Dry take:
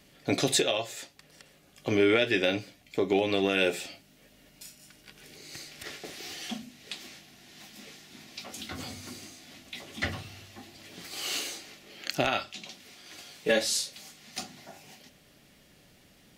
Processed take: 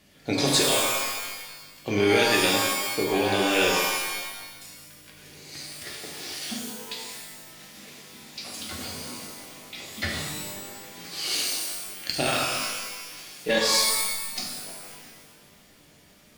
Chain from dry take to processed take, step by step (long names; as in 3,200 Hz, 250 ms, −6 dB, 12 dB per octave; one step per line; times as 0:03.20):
dynamic equaliser 4,700 Hz, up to +8 dB, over −50 dBFS, Q 2.4
harmonic generator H 2 −20 dB, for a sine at −11 dBFS
reverb with rising layers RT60 1.2 s, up +12 semitones, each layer −2 dB, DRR −1.5 dB
level −1.5 dB